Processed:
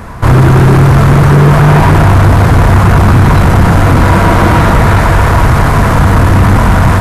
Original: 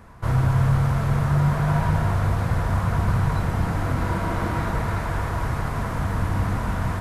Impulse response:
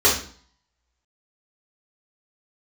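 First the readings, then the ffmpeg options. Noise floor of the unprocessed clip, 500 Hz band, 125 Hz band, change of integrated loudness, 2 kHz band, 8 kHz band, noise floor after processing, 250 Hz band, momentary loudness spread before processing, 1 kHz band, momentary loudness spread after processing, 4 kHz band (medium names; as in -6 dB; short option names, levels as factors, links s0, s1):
-27 dBFS, +19.0 dB, +16.0 dB, +17.0 dB, +18.5 dB, +18.0 dB, -8 dBFS, +18.0 dB, 6 LU, +18.0 dB, 3 LU, +19.0 dB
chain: -af "aeval=exprs='0.335*sin(PI/2*2.51*val(0)/0.335)':c=same,acontrast=37,volume=1.58"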